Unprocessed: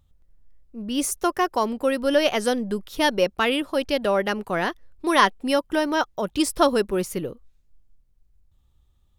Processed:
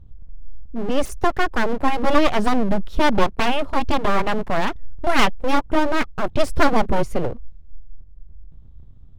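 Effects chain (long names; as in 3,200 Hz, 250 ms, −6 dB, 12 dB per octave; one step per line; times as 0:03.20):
RIAA equalisation playback
full-wave rectification
level +3 dB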